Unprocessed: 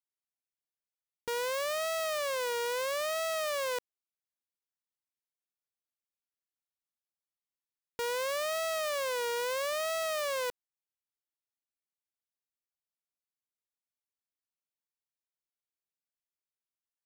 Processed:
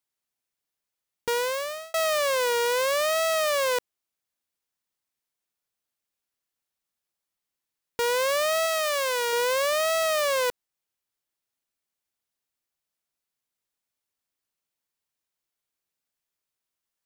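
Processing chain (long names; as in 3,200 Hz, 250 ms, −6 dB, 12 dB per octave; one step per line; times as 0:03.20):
0:01.29–0:01.94: fade out
0:08.66–0:09.33: low-shelf EQ 410 Hz −8.5 dB
level +8.5 dB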